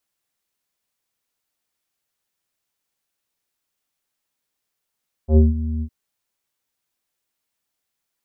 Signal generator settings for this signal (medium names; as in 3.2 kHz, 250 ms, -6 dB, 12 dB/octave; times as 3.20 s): synth note square D#2 24 dB/octave, low-pass 240 Hz, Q 1.5, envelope 1.5 oct, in 0.22 s, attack 88 ms, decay 0.17 s, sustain -14 dB, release 0.07 s, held 0.54 s